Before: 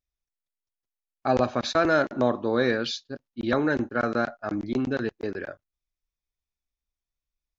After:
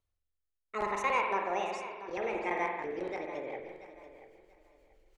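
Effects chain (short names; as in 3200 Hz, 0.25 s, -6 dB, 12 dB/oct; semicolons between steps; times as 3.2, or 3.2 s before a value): speed glide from 174% -> 119%; reverse; upward compressor, threshold -36 dBFS; reverse; bell 140 Hz -10 dB 2 oct; spring tank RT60 1.5 s, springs 45 ms, chirp 45 ms, DRR 1.5 dB; rotary speaker horn 0.65 Hz, later 6.3 Hz, at 2.61; high shelf 4100 Hz -12 dB; on a send: feedback echo 0.685 s, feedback 25%, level -14.5 dB; on the sum: gain -6.5 dB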